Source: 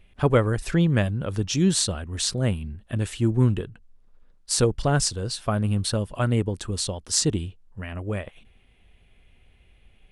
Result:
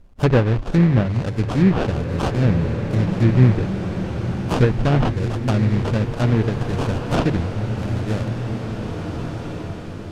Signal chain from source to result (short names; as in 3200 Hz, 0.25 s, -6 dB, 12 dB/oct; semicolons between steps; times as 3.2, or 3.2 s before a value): rattling part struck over -27 dBFS, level -22 dBFS; sample-rate reducer 2100 Hz, jitter 20%; low shelf 330 Hz +7.5 dB; notches 50/100/150 Hz; treble ducked by the level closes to 2600 Hz, closed at -11.5 dBFS; high shelf 9300 Hz -4 dB; bloom reverb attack 2.31 s, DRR 5 dB